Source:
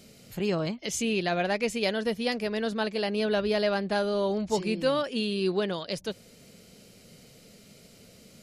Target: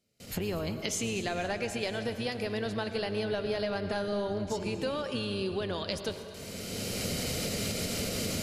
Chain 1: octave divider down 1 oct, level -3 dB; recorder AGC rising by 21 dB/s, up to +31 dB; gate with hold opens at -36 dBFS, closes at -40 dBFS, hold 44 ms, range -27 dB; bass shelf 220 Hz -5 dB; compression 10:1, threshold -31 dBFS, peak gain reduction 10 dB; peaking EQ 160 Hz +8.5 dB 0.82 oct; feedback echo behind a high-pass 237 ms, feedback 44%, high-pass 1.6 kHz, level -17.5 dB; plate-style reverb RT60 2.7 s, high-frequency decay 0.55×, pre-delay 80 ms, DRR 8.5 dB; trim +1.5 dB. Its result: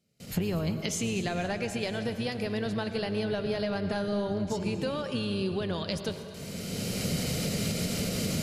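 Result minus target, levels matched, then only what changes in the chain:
125 Hz band +3.5 dB
remove: peaking EQ 160 Hz +8.5 dB 0.82 oct

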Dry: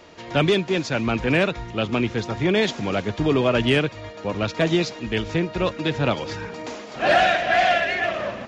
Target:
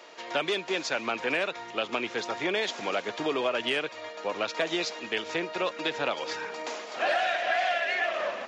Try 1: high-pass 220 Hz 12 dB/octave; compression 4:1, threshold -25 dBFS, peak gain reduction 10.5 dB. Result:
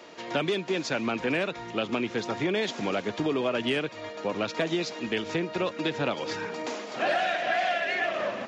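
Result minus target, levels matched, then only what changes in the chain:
250 Hz band +6.0 dB
change: high-pass 510 Hz 12 dB/octave

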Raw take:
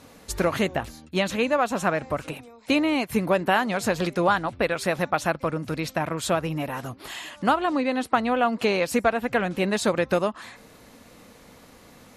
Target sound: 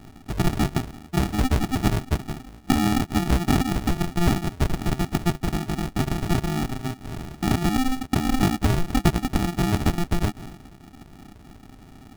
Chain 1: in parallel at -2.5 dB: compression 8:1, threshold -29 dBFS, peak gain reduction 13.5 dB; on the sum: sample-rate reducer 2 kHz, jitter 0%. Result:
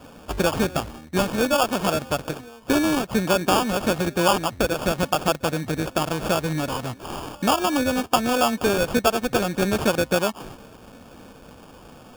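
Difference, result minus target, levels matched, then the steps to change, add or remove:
sample-rate reducer: distortion -28 dB
change: sample-rate reducer 520 Hz, jitter 0%

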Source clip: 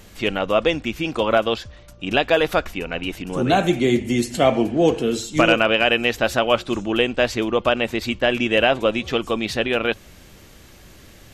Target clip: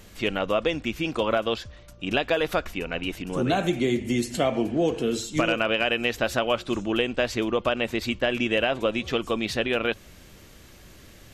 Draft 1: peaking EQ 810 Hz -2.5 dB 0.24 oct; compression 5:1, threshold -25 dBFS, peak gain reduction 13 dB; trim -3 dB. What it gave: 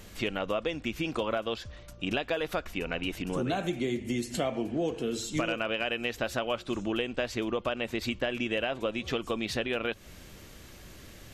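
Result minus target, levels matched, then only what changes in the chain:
compression: peak gain reduction +7 dB
change: compression 5:1, threshold -16 dBFS, peak gain reduction 6 dB

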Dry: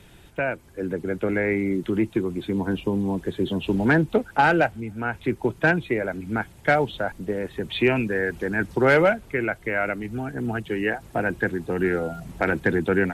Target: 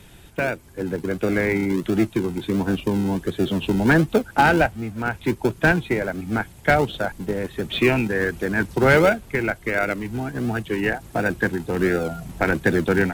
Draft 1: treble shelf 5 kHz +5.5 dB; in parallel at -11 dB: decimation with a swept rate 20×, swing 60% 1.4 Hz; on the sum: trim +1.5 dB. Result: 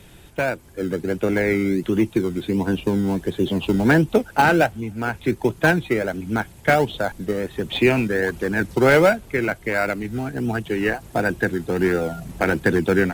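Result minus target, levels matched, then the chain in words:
decimation with a swept rate: distortion -15 dB
treble shelf 5 kHz +5.5 dB; in parallel at -11 dB: decimation with a swept rate 60×, swing 60% 1.4 Hz; on the sum: trim +1.5 dB

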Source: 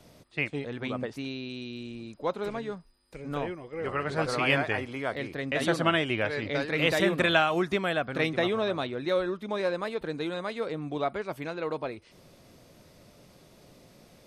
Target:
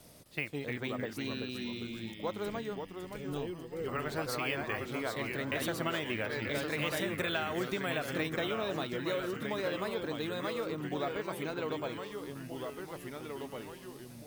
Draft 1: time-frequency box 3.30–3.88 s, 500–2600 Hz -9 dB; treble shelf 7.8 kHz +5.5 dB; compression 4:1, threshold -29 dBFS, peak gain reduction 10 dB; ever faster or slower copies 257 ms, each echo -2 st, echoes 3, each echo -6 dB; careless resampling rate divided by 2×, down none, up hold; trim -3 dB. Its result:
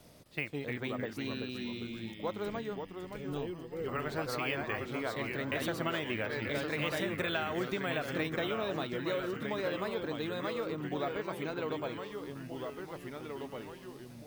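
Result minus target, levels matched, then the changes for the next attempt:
8 kHz band -4.5 dB
change: treble shelf 7.8 kHz +15 dB

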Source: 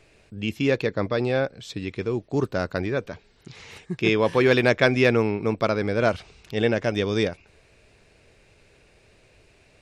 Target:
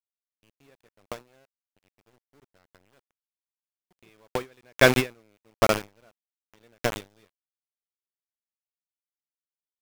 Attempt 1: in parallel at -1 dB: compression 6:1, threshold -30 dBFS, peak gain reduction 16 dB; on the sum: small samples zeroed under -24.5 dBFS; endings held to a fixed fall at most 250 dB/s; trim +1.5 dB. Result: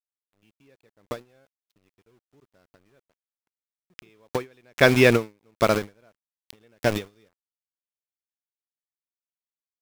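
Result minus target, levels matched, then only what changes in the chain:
small samples zeroed: distortion -7 dB
change: small samples zeroed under -18.5 dBFS

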